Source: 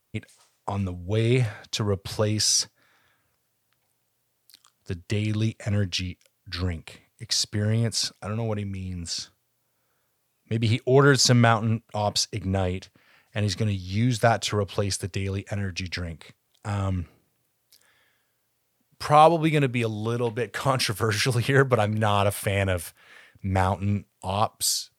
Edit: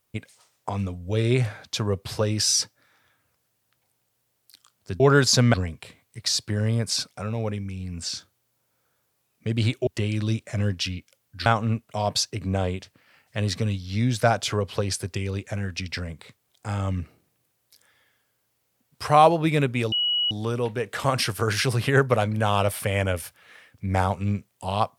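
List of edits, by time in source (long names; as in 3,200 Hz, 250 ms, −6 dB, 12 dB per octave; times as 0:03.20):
0:05.00–0:06.59: swap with 0:10.92–0:11.46
0:19.92: insert tone 2,920 Hz −20.5 dBFS 0.39 s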